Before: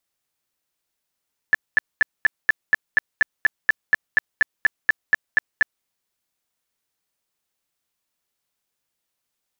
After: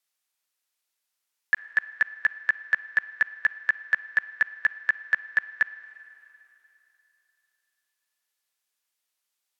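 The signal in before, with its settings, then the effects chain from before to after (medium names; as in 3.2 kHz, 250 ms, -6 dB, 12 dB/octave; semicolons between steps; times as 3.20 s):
tone bursts 1.74 kHz, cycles 27, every 0.24 s, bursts 18, -10.5 dBFS
low-pass that closes with the level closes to 2.3 kHz, closed at -21.5 dBFS; high-pass 1.3 kHz 6 dB/octave; Schroeder reverb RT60 3.1 s, DRR 16 dB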